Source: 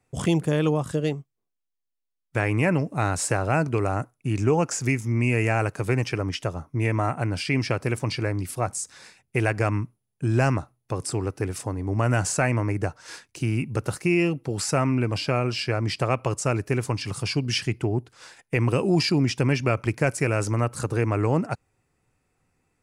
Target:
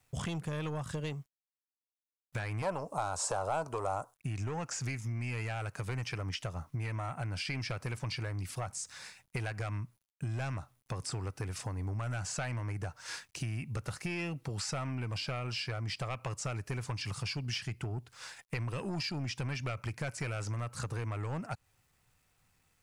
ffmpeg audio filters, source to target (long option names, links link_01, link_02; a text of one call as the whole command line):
ffmpeg -i in.wav -filter_complex "[0:a]asoftclip=type=tanh:threshold=-17dB,acrossover=split=7000[link_01][link_02];[link_02]acompressor=threshold=-49dB:ratio=4:attack=1:release=60[link_03];[link_01][link_03]amix=inputs=2:normalize=0,acrusher=bits=11:mix=0:aa=0.000001,equalizer=frequency=340:width=0.87:gain=-10,acompressor=threshold=-34dB:ratio=6,asettb=1/sr,asplit=3[link_04][link_05][link_06];[link_04]atrim=end=2.624[link_07];[link_05]atrim=start=2.62:end=4.15,asetpts=PTS-STARTPTS,afade=type=in:duration=0.004:curve=qsin,afade=type=out:start_time=1.526:duration=0.004:curve=qsin,equalizer=frequency=125:width_type=o:width=1:gain=-9,equalizer=frequency=250:width_type=o:width=1:gain=-4,equalizer=frequency=500:width_type=o:width=1:gain=8,equalizer=frequency=1000:width_type=o:width=1:gain=11,equalizer=frequency=2000:width_type=o:width=1:gain=-11,equalizer=frequency=8000:width_type=o:width=1:gain=6[link_08];[link_06]atrim=start=4.146[link_09];[link_07][link_08]acrossfade=duration=0.004:curve1=hsin:curve2=qsin[link_10];[link_10][link_09]acrossfade=duration=0.004:curve1=qsin:curve2=hsin" out.wav